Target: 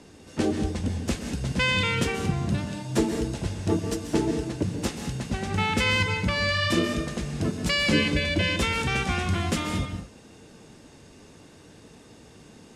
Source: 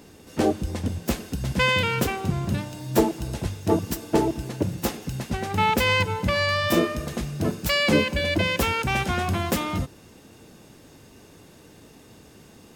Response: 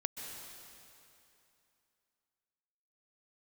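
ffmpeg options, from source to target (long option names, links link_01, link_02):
-filter_complex "[0:a]lowpass=frequency=9800:width=0.5412,lowpass=frequency=9800:width=1.3066,acrossover=split=440|1200[link_01][link_02][link_03];[link_02]acompressor=threshold=-39dB:ratio=6[link_04];[link_01][link_04][link_03]amix=inputs=3:normalize=0[link_05];[1:a]atrim=start_sample=2205,afade=type=out:start_time=0.28:duration=0.01,atrim=end_sample=12789[link_06];[link_05][link_06]afir=irnorm=-1:irlink=0"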